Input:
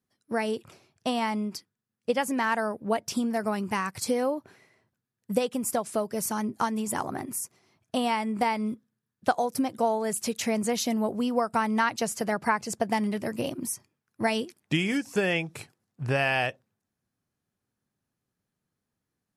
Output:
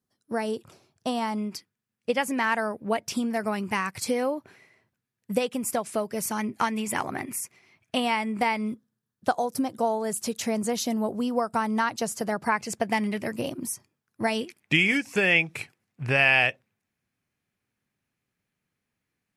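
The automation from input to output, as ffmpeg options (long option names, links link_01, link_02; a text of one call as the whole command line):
ffmpeg -i in.wav -af "asetnsamples=nb_out_samples=441:pad=0,asendcmd='1.38 equalizer g 5.5;6.39 equalizer g 13;8 equalizer g 6;8.73 equalizer g -3.5;12.52 equalizer g 7;13.32 equalizer g 0;14.41 equalizer g 11',equalizer=frequency=2300:width_type=o:width=0.82:gain=-5" out.wav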